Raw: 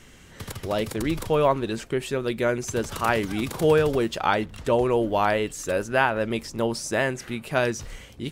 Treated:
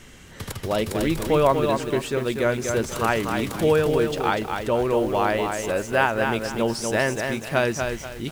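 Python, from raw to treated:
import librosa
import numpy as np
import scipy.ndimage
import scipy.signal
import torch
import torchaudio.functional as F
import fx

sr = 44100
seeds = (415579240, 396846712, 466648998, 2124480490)

y = fx.rider(x, sr, range_db=10, speed_s=2.0)
y = fx.echo_crushed(y, sr, ms=242, feedback_pct=35, bits=7, wet_db=-5)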